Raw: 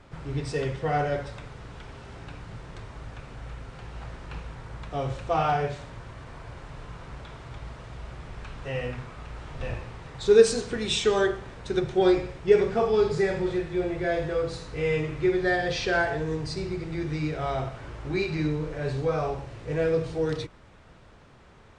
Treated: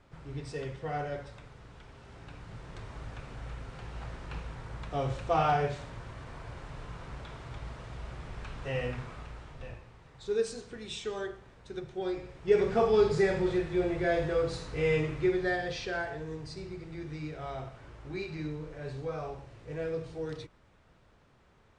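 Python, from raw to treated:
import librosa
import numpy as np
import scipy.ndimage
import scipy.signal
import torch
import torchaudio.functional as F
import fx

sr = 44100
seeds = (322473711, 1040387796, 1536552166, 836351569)

y = fx.gain(x, sr, db=fx.line((1.93, -9.0), (2.94, -2.0), (9.14, -2.0), (9.81, -13.5), (12.11, -13.5), (12.73, -1.5), (15.02, -1.5), (15.97, -10.0)))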